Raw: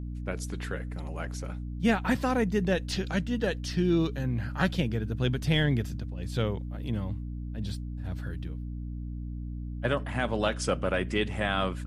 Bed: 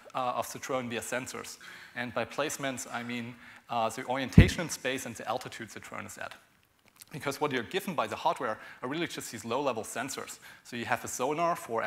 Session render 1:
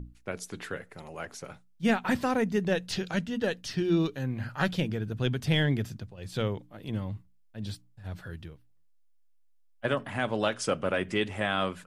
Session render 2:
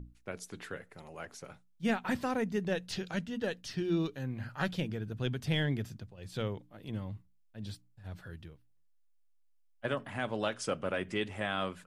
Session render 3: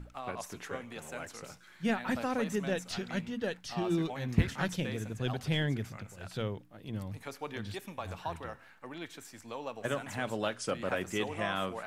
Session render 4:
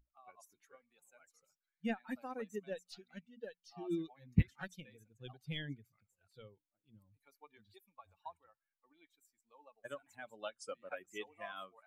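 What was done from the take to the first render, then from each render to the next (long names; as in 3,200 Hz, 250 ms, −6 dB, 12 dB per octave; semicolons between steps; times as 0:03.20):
mains-hum notches 60/120/180/240/300 Hz
level −5.5 dB
mix in bed −10 dB
spectral dynamics exaggerated over time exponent 2; expander for the loud parts 1.5 to 1, over −45 dBFS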